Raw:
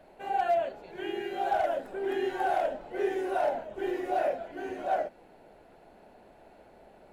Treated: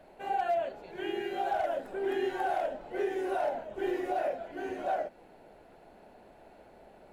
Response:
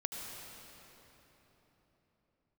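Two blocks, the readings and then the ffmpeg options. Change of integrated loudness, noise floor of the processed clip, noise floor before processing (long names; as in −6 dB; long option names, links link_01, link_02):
−2.0 dB, −57 dBFS, −57 dBFS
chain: -af "alimiter=limit=-22.5dB:level=0:latency=1:release=272"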